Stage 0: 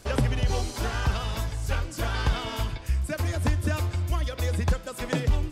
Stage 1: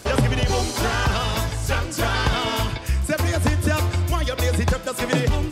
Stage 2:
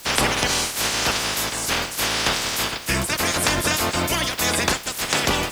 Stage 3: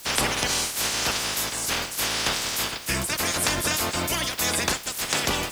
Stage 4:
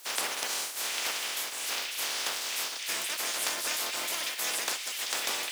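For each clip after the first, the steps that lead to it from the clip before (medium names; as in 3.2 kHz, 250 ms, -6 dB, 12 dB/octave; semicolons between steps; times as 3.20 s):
high-pass 110 Hz 6 dB/octave; in parallel at +2.5 dB: peak limiter -22.5 dBFS, peak gain reduction 9 dB; on the sum: trim +2.5 dB
spectral peaks clipped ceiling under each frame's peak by 27 dB; in parallel at -5 dB: word length cut 6-bit, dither triangular; on the sum: trim -5 dB
treble shelf 4.6 kHz +4.5 dB; trim -5 dB
spectral contrast reduction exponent 0.61; high-pass 440 Hz 12 dB/octave; repeats whose band climbs or falls 799 ms, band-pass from 2.7 kHz, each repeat 0.7 oct, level -1 dB; trim -7.5 dB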